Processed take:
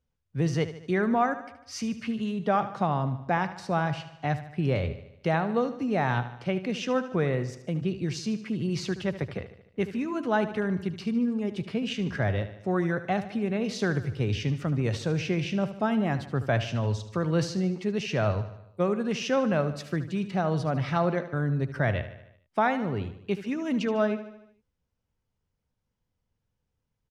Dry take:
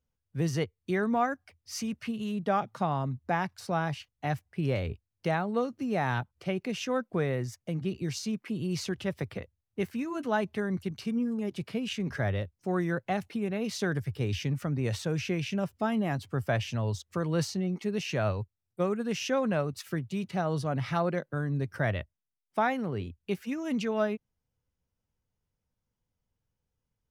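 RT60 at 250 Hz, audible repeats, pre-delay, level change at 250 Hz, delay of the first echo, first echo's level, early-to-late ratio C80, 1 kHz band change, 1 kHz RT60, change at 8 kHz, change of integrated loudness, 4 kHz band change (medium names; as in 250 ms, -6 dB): no reverb, 5, no reverb, +3.5 dB, 75 ms, -13.0 dB, no reverb, +3.0 dB, no reverb, -1.0 dB, +3.0 dB, +1.5 dB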